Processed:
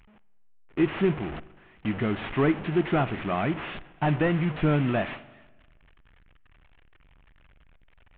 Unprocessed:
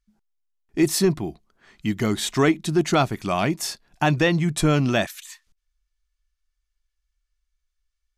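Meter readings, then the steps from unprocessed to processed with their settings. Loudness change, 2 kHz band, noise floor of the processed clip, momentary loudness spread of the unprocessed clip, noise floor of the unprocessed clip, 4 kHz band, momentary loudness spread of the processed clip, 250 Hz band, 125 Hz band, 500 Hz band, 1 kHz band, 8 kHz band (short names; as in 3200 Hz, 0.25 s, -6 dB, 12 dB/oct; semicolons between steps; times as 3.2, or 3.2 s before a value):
-4.5 dB, -5.0 dB, -57 dBFS, 11 LU, -79 dBFS, -12.0 dB, 12 LU, -4.0 dB, -3.5 dB, -4.0 dB, -4.5 dB, under -40 dB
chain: delta modulation 16 kbps, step -25.5 dBFS; gate with hold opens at -25 dBFS; spring tank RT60 1.3 s, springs 40/50 ms, chirp 75 ms, DRR 18 dB; gain -4 dB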